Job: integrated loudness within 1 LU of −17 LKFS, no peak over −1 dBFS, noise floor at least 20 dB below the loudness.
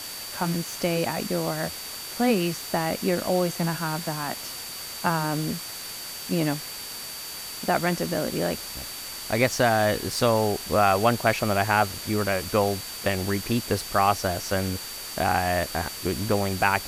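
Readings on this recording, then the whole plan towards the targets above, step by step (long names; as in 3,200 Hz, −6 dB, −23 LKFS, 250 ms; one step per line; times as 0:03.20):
interfering tone 4,600 Hz; level of the tone −39 dBFS; background noise floor −37 dBFS; target noise floor −46 dBFS; integrated loudness −26.0 LKFS; sample peak −6.5 dBFS; target loudness −17.0 LKFS
→ notch filter 4,600 Hz, Q 30
broadband denoise 9 dB, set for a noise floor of −37 dBFS
level +9 dB
brickwall limiter −1 dBFS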